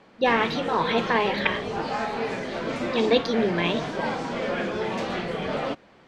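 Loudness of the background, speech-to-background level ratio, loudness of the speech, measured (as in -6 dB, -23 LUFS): -29.5 LUFS, 4.5 dB, -25.0 LUFS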